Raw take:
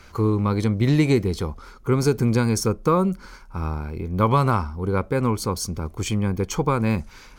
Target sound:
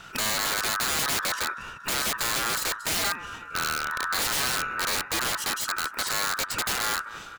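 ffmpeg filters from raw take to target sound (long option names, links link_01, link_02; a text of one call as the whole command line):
ffmpeg -i in.wav -filter_complex "[0:a]asplit=2[link_01][link_02];[link_02]acompressor=threshold=-29dB:ratio=8,volume=3dB[link_03];[link_01][link_03]amix=inputs=2:normalize=0,aeval=exprs='val(0)*sin(2*PI*1400*n/s)':channel_layout=same,aecho=1:1:233|466|699|932:0.119|0.0547|0.0251|0.0116,aeval=exprs='(mod(7.5*val(0)+1,2)-1)/7.5':channel_layout=same,volume=-3dB" out.wav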